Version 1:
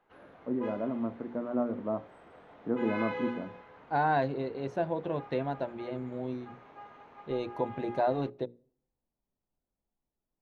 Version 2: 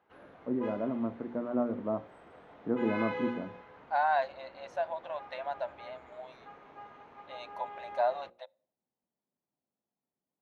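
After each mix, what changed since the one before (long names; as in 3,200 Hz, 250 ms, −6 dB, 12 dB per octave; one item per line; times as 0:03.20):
second voice: add linear-phase brick-wall high-pass 530 Hz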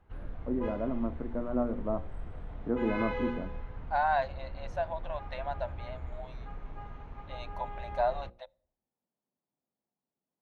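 background: remove high-pass filter 350 Hz 12 dB per octave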